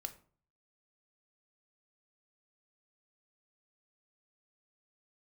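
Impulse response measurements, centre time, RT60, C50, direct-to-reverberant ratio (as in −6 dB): 6 ms, 0.45 s, 15.0 dB, 6.0 dB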